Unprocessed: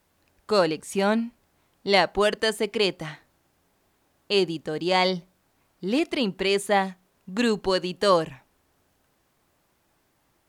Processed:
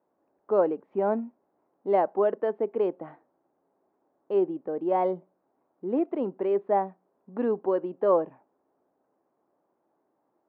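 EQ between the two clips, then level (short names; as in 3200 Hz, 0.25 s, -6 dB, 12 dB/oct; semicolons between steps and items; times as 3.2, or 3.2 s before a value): Butterworth band-pass 510 Hz, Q 0.74; air absorption 300 m; 0.0 dB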